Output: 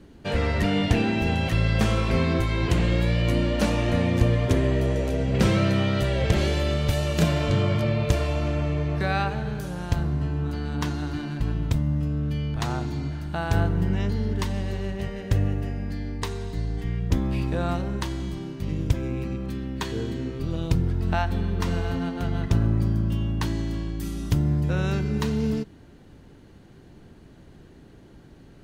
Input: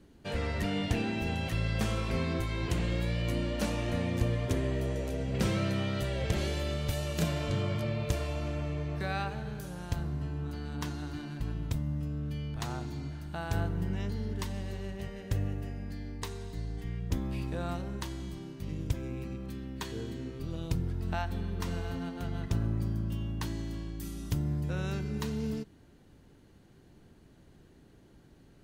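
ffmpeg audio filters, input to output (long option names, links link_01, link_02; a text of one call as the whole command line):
ffmpeg -i in.wav -af "highshelf=frequency=6800:gain=-7.5,volume=9dB" out.wav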